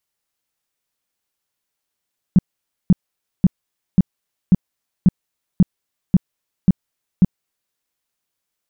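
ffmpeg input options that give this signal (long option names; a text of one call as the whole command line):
ffmpeg -f lavfi -i "aevalsrc='0.501*sin(2*PI*184*mod(t,0.54))*lt(mod(t,0.54),5/184)':duration=5.4:sample_rate=44100" out.wav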